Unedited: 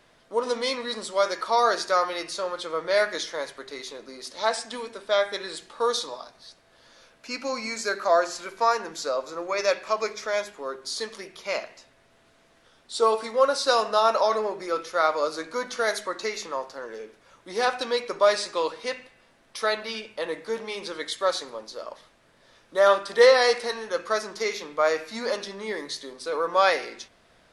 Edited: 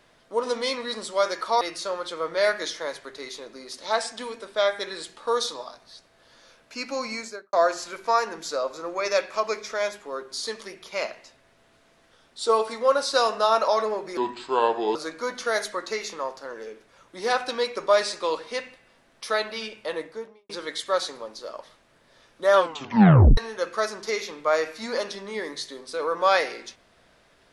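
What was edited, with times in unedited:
0:01.61–0:02.14: remove
0:07.65–0:08.06: fade out and dull
0:14.70–0:15.28: play speed 74%
0:20.24–0:20.82: fade out and dull
0:22.88: tape stop 0.82 s

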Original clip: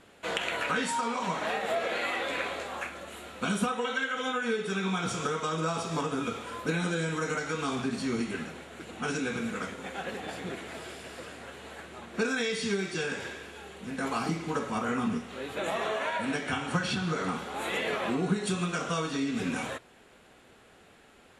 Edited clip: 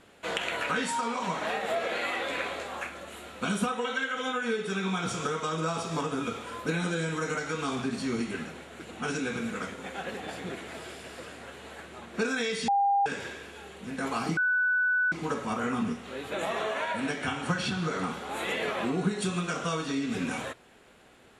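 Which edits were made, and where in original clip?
0:12.68–0:13.06: beep over 801 Hz −21 dBFS
0:14.37: insert tone 1,490 Hz −22.5 dBFS 0.75 s

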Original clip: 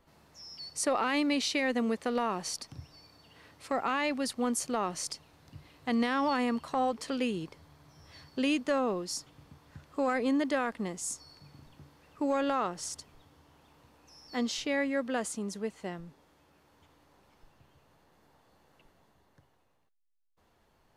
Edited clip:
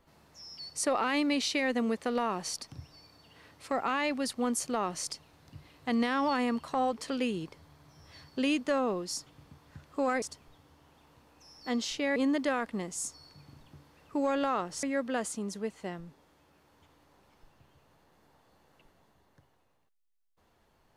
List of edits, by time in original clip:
0:12.89–0:14.83: move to 0:10.22

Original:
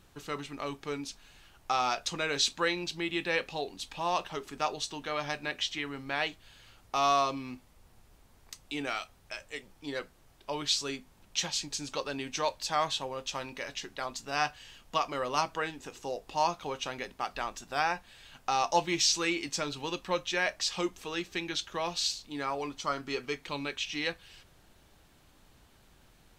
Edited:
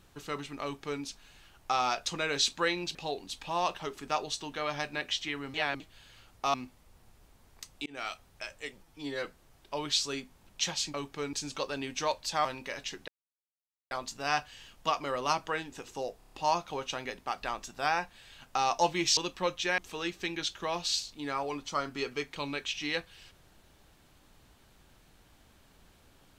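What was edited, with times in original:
0:00.63–0:01.02: duplicate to 0:11.70
0:02.95–0:03.45: remove
0:06.04–0:06.30: reverse
0:07.04–0:07.44: remove
0:08.76–0:09.01: fade in
0:09.73–0:10.01: time-stretch 1.5×
0:12.82–0:13.36: remove
0:13.99: splice in silence 0.83 s
0:16.26: stutter 0.03 s, 6 plays
0:19.10–0:19.85: remove
0:20.46–0:20.90: remove

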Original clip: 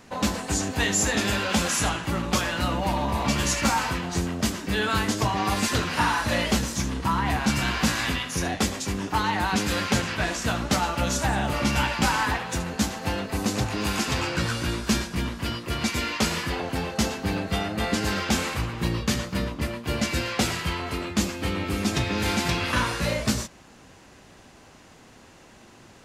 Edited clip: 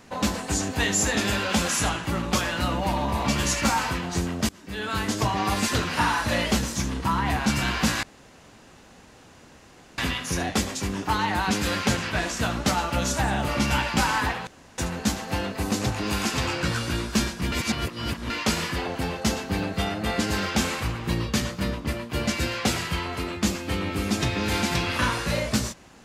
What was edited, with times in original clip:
0:04.49–0:05.20: fade in, from −23.5 dB
0:08.03: splice in room tone 1.95 s
0:12.52: splice in room tone 0.31 s
0:15.26–0:16.04: reverse

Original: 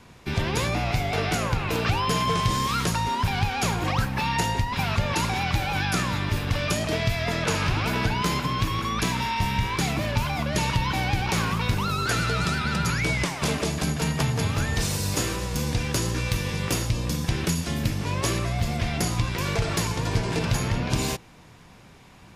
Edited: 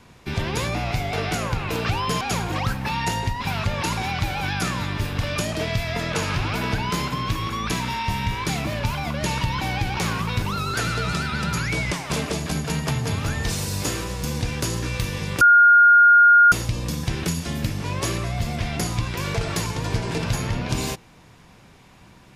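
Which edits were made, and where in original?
0:02.21–0:03.53: remove
0:16.73: insert tone 1,420 Hz −9 dBFS 1.11 s

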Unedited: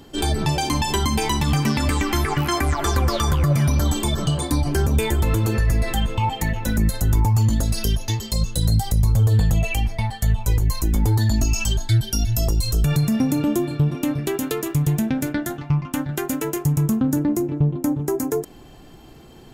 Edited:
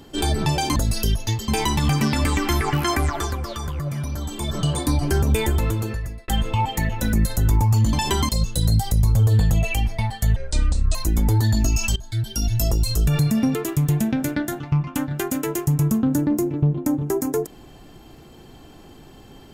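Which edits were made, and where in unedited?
0:00.76–0:01.12: swap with 0:07.57–0:08.29
0:02.64–0:04.34: duck −9 dB, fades 0.39 s
0:05.13–0:05.92: fade out
0:10.36–0:10.72: play speed 61%
0:11.73–0:12.29: fade in, from −18 dB
0:13.32–0:14.53: remove

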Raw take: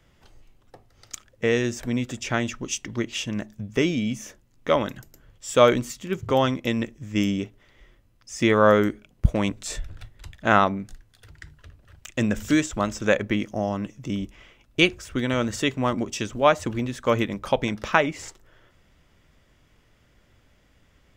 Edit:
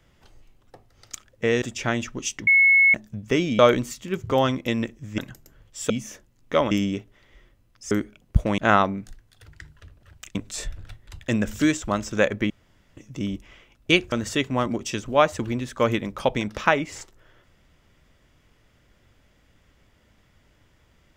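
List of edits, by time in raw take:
0:01.62–0:02.08: remove
0:02.93–0:03.40: beep over 2,190 Hz −12.5 dBFS
0:04.05–0:04.86: swap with 0:05.58–0:07.17
0:08.37–0:08.80: remove
0:09.47–0:10.40: move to 0:12.17
0:13.39–0:13.86: fill with room tone
0:15.01–0:15.39: remove

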